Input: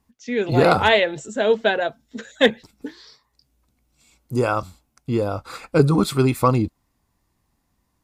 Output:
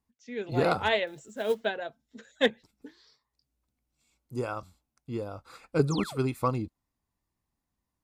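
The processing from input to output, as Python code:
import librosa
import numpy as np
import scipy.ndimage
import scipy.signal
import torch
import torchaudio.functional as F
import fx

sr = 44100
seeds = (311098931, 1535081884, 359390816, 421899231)

y = fx.quant_companded(x, sr, bits=6, at=(1.07, 1.65))
y = fx.spec_paint(y, sr, seeds[0], shape='fall', start_s=5.9, length_s=0.28, low_hz=370.0, high_hz=8000.0, level_db=-29.0)
y = fx.upward_expand(y, sr, threshold_db=-23.0, expansion=1.5)
y = y * 10.0 ** (-8.0 / 20.0)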